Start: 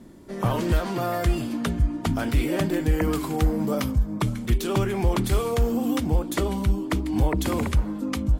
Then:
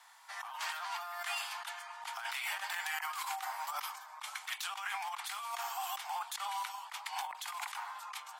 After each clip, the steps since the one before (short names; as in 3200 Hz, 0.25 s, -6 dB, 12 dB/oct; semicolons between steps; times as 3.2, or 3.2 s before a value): steep high-pass 780 Hz 72 dB/oct; high shelf 7900 Hz -6 dB; negative-ratio compressor -40 dBFS, ratio -1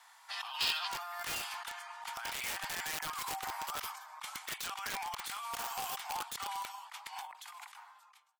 ending faded out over 2.18 s; wrapped overs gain 31 dB; spectral gain 0.31–0.88, 2400–5400 Hz +12 dB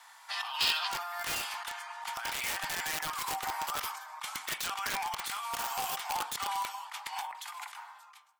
vocal rider within 3 dB 2 s; on a send at -10.5 dB: reverb RT60 0.60 s, pre-delay 3 ms; on the sum: gain +3.5 dB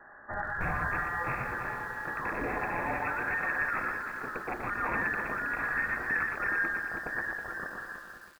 echo 0.119 s -5.5 dB; inverted band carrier 2600 Hz; lo-fi delay 0.322 s, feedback 35%, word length 9-bit, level -8 dB; gain +3.5 dB